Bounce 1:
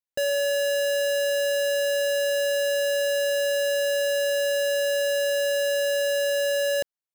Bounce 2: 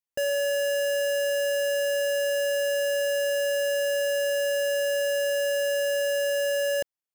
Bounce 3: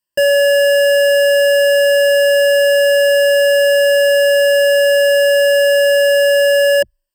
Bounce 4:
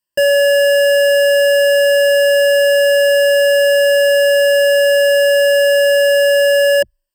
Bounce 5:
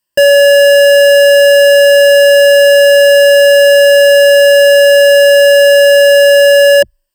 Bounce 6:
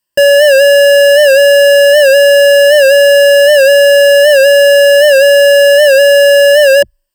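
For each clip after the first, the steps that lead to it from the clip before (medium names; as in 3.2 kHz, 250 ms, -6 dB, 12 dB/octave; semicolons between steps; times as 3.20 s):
band-stop 3.9 kHz, Q 5.8; trim -1.5 dB
rippled EQ curve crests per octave 1.3, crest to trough 15 dB; trim +7.5 dB
no audible change
saturation -8 dBFS, distortion -22 dB; trim +8 dB
warped record 78 rpm, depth 100 cents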